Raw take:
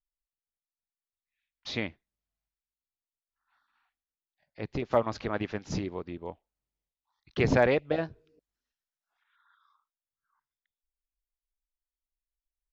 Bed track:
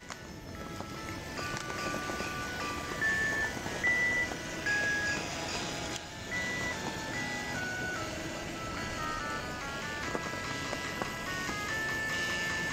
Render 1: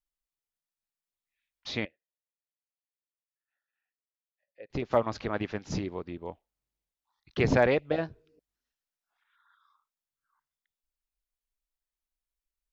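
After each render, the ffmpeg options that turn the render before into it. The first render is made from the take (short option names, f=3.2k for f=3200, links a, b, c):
-filter_complex "[0:a]asettb=1/sr,asplit=3[a][b][c];[a]atrim=end=1.854[d];[b]atrim=start=1.85:end=4.7,asetpts=PTS-STARTPTS,afade=t=in:d=0.004:c=qsin,afade=t=out:st=2.846:d=0.004:c=qsin,asplit=3[e][f][g];[e]bandpass=f=530:t=q:w=8,volume=0dB[h];[f]bandpass=f=1.84k:t=q:w=8,volume=-6dB[i];[g]bandpass=f=2.48k:t=q:w=8,volume=-9dB[j];[h][i][j]amix=inputs=3:normalize=0[k];[c]atrim=start=4.696[l];[d][k]acrossfade=d=0.004:c1=hsin:c2=qsin[m];[m][l]acrossfade=d=0.004:c1=qsin:c2=hsin"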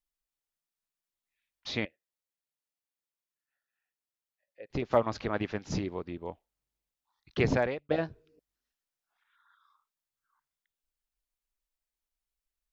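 -filter_complex "[0:a]asplit=2[a][b];[a]atrim=end=7.89,asetpts=PTS-STARTPTS,afade=t=out:st=7.38:d=0.51[c];[b]atrim=start=7.89,asetpts=PTS-STARTPTS,afade=t=in:d=0.004:c=hsin[d];[c][d]concat=n=2:v=0:a=1"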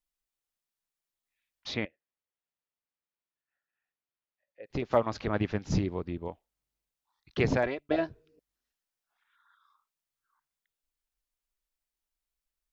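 -filter_complex "[0:a]asettb=1/sr,asplit=3[a][b][c];[a]atrim=end=1.744[d];[b]atrim=start=1.74:end=4.64,asetpts=PTS-STARTPTS,afade=t=in:d=0.004:c=qsin,afade=t=out:st=2.896:d=0.004:c=qsin,lowpass=3k[e];[c]atrim=start=4.636[f];[d][e]acrossfade=d=0.004:c1=hsin:c2=qsin[g];[g][f]acrossfade=d=0.004:c1=qsin:c2=hsin,asettb=1/sr,asplit=3[h][i][j];[h]atrim=end=5.274[k];[i]atrim=start=5.27:end=6.28,asetpts=PTS-STARTPTS,afade=t=in:d=0.004:c=qsin,afade=t=out:st=1.006:d=0.004:c=qsin,lowshelf=f=200:g=9[l];[j]atrim=start=6.276[m];[k][l]acrossfade=d=0.004:c1=hsin:c2=qsin[n];[n][m]acrossfade=d=0.004:c1=qsin:c2=hsin,asettb=1/sr,asplit=3[o][p][q];[o]atrim=end=7.634[r];[p]atrim=start=7.63:end=8.09,asetpts=PTS-STARTPTS,afade=t=in:d=0.004:c=qsin,afade=t=out:st=0.456:d=0.004:c=qsin,aecho=1:1:3:0.61,atrim=end_sample=20286[s];[q]atrim=start=8.086[t];[r][s]acrossfade=d=0.004:c1=hsin:c2=qsin[u];[u][t]acrossfade=d=0.004:c1=qsin:c2=hsin"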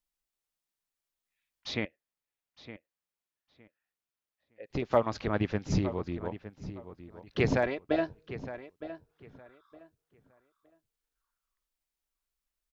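-filter_complex "[0:a]asplit=2[a][b];[b]adelay=913,lowpass=f=3.4k:p=1,volume=-13dB,asplit=2[c][d];[d]adelay=913,lowpass=f=3.4k:p=1,volume=0.23,asplit=2[e][f];[f]adelay=913,lowpass=f=3.4k:p=1,volume=0.23[g];[a][c][e][g]amix=inputs=4:normalize=0"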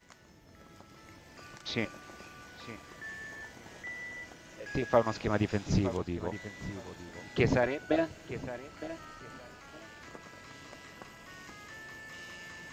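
-filter_complex "[1:a]volume=-13.5dB[a];[0:a][a]amix=inputs=2:normalize=0"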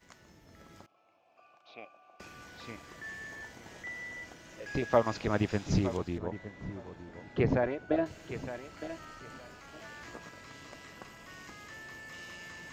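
-filter_complex "[0:a]asettb=1/sr,asplit=3[a][b][c];[a]atrim=end=0.864[d];[b]atrim=start=0.86:end=2.2,asetpts=PTS-STARTPTS,afade=t=in:d=0.004:c=qsin,afade=t=out:st=1.336:d=0.004:c=qsin,asplit=3[e][f][g];[e]bandpass=f=730:t=q:w=8,volume=0dB[h];[f]bandpass=f=1.09k:t=q:w=8,volume=-6dB[i];[g]bandpass=f=2.44k:t=q:w=8,volume=-9dB[j];[h][i][j]amix=inputs=3:normalize=0[k];[c]atrim=start=2.196[l];[d][k]acrossfade=d=0.004:c1=hsin:c2=qsin[m];[m][l]acrossfade=d=0.004:c1=qsin:c2=hsin,asettb=1/sr,asplit=3[n][o][p];[n]atrim=end=6.184[q];[o]atrim=start=6.18:end=8.06,asetpts=PTS-STARTPTS,afade=t=in:d=0.004:c=qsin,afade=t=out:st=1.876:d=0.004:c=qsin,lowpass=f=1.2k:p=1[r];[p]atrim=start=8.056[s];[q][r]acrossfade=d=0.004:c1=hsin:c2=qsin[t];[t][s]acrossfade=d=0.004:c1=qsin:c2=hsin,asettb=1/sr,asplit=3[u][v][w];[u]atrim=end=9.784[x];[v]atrim=start=9.78:end=10.29,asetpts=PTS-STARTPTS,afade=t=in:d=0.004:c=qsin,afade=t=out:st=0.506:d=0.004:c=qsin,asplit=2[y][z];[z]adelay=17,volume=-3dB[aa];[y][aa]amix=inputs=2:normalize=0,atrim=end_sample=22491[ab];[w]atrim=start=10.286[ac];[x][ab]acrossfade=d=0.004:c1=hsin:c2=qsin[ad];[ad][ac]acrossfade=d=0.004:c1=qsin:c2=hsin"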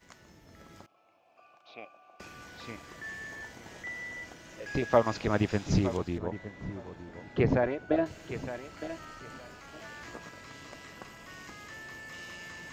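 -af "volume=2dB"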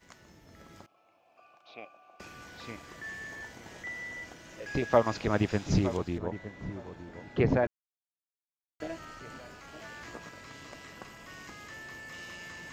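-filter_complex "[0:a]asplit=3[a][b][c];[a]atrim=end=7.67,asetpts=PTS-STARTPTS,afade=t=out:st=7.666:d=0.004:c=hsin[d];[b]atrim=start=7.67:end=8.8,asetpts=PTS-STARTPTS,volume=0[e];[c]atrim=start=8.8,asetpts=PTS-STARTPTS,afade=t=in:d=0.004:c=hsin[f];[d][e][f]concat=n=3:v=0:a=1"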